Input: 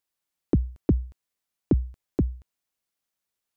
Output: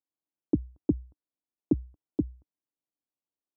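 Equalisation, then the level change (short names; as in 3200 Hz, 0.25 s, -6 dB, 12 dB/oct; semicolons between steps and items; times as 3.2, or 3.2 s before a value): HPF 69 Hz; LPF 1000 Hz 24 dB/oct; bell 300 Hz +10.5 dB 0.46 oct; -8.5 dB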